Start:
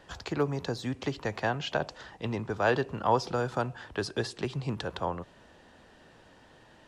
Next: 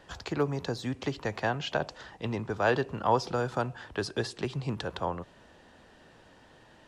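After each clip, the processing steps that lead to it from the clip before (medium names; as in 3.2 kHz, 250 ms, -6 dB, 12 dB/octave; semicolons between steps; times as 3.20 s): no audible change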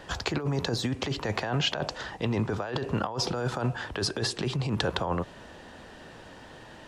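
compressor with a negative ratio -34 dBFS, ratio -1; trim +5.5 dB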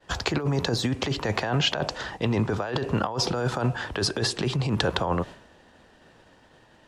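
expander -38 dBFS; trim +3.5 dB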